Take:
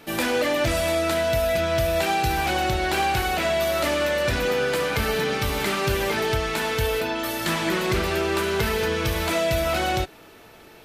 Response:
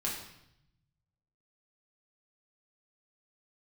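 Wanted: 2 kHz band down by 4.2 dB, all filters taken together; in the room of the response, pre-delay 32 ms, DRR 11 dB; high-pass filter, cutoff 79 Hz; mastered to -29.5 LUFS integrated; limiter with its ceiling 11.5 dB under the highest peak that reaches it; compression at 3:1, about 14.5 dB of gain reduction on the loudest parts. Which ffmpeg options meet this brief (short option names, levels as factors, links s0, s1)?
-filter_complex "[0:a]highpass=79,equalizer=f=2000:t=o:g=-5.5,acompressor=threshold=0.00891:ratio=3,alimiter=level_in=4.22:limit=0.0631:level=0:latency=1,volume=0.237,asplit=2[s0][s1];[1:a]atrim=start_sample=2205,adelay=32[s2];[s1][s2]afir=irnorm=-1:irlink=0,volume=0.178[s3];[s0][s3]amix=inputs=2:normalize=0,volume=5.31"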